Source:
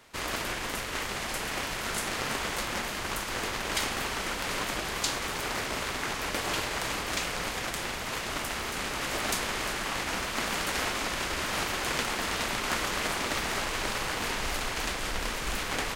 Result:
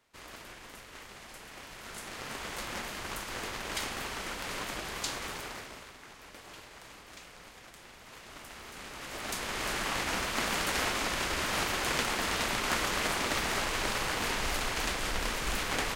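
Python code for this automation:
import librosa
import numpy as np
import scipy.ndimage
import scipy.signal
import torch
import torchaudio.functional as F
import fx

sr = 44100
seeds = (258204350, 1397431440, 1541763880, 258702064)

y = fx.gain(x, sr, db=fx.line((1.53, -15.0), (2.7, -5.5), (5.31, -5.5), (5.97, -18.5), (7.82, -18.5), (9.08, -10.0), (9.75, -0.5)))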